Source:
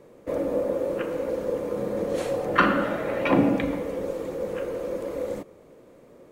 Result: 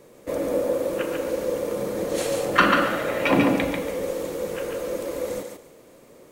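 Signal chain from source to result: high shelf 3000 Hz +12 dB; thinning echo 0.142 s, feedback 22%, level -4 dB

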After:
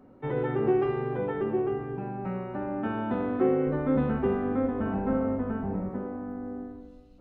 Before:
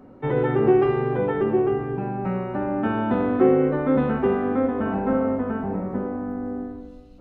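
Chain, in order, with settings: 3.67–5.9 low shelf 150 Hz +9.5 dB; gain -7 dB

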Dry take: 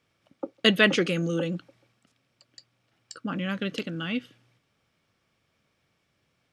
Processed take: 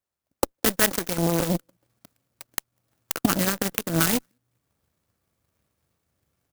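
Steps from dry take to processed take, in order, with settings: recorder AGC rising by 47 dB/s; requantised 8-bit, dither triangular; LPF 5000 Hz 24 dB/oct; bell 68 Hz +11.5 dB 0.75 oct; echo 0.198 s -22.5 dB; dynamic EQ 1600 Hz, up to +4 dB, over -36 dBFS, Q 1.3; added harmonics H 3 -29 dB, 7 -18 dB, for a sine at -2.5 dBFS; maximiser +8 dB; clock jitter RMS 0.11 ms; gain -5 dB

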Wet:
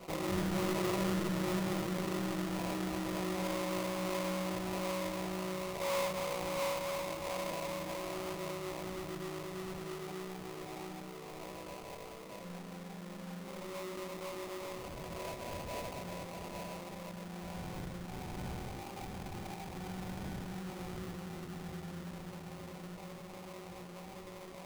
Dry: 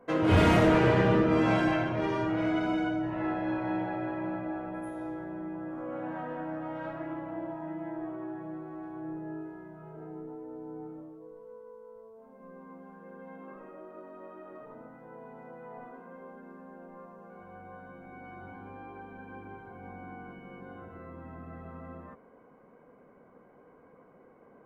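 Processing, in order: metallic resonator 180 Hz, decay 0.5 s, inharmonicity 0.008; diffused feedback echo 0.725 s, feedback 43%, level -5 dB; treble ducked by the level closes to 810 Hz, closed at -42 dBFS; 5.8–6.79 bell 490 Hz +10 dB 0.48 oct; sample-rate reducer 1600 Hz, jitter 20%; fast leveller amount 50%; gain +6.5 dB

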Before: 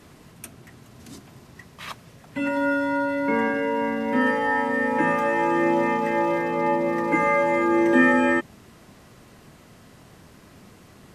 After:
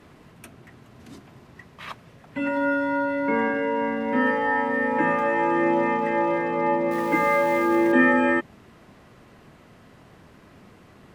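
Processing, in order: 6.91–7.92 switching spikes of -25 dBFS; tone controls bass -2 dB, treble -10 dB

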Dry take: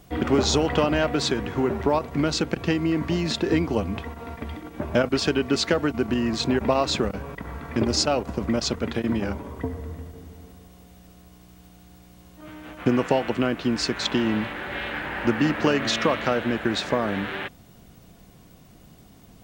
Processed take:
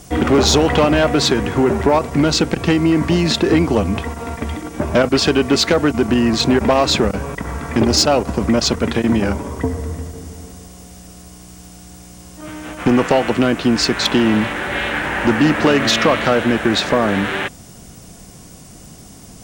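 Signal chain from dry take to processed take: band noise 4900–10000 Hz -57 dBFS; added harmonics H 5 -14 dB, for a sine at -6.5 dBFS; gain +4 dB

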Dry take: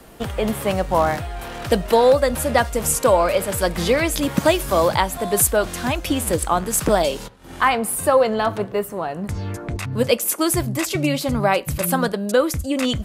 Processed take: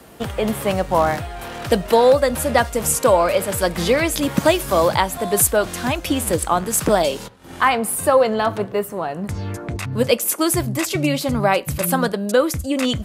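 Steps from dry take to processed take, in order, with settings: HPF 63 Hz; gain +1 dB

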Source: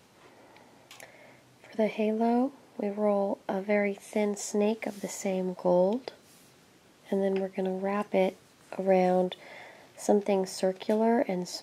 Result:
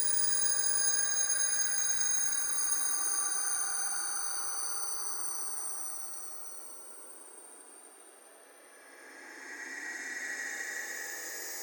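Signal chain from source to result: spectrum mirrored in octaves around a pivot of 2000 Hz; notches 60/120/180/240/300/360/420/480/540/600 Hz; Paulstretch 47×, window 0.05 s, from 4.61

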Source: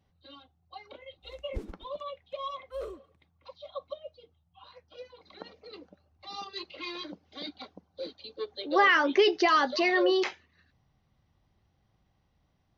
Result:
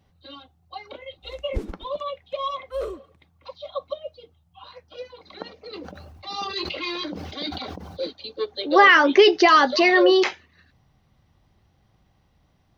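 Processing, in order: 5.7–8.05 sustainer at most 27 dB/s; gain +8.5 dB

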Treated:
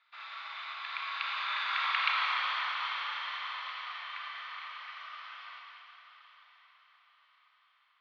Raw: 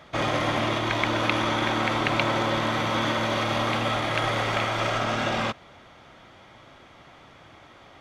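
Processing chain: Doppler pass-by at 2.06, 24 m/s, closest 12 m; elliptic band-pass 1100–4400 Hz, stop band 70 dB; diffused feedback echo 0.934 s, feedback 41%, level -14.5 dB; Schroeder reverb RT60 2.6 s, combs from 28 ms, DRR -1.5 dB; gain -5 dB

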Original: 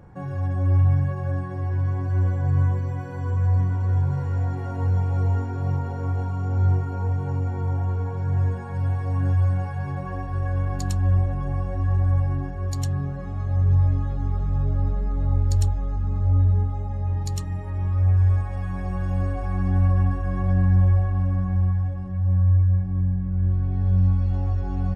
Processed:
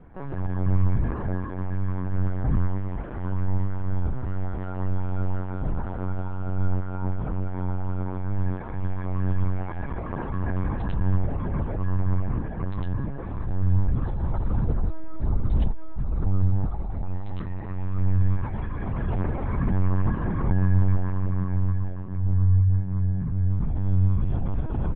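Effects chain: LPC vocoder at 8 kHz pitch kept; gain -1 dB

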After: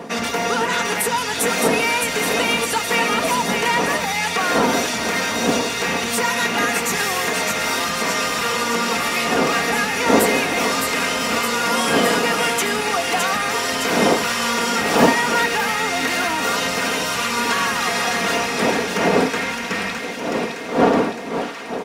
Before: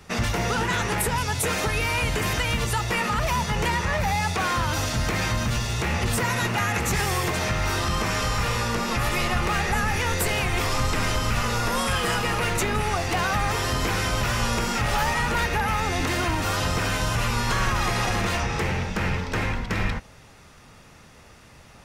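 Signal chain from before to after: wind noise 510 Hz -27 dBFS; HPF 240 Hz 12 dB/oct; comb 4.3 ms, depth 53%; thin delay 0.613 s, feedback 61%, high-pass 1900 Hz, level -4 dB; gain +3.5 dB

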